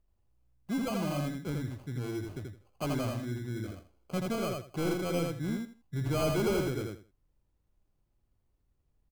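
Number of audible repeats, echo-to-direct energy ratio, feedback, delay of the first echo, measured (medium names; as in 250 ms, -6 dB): 3, -3.0 dB, 21%, 82 ms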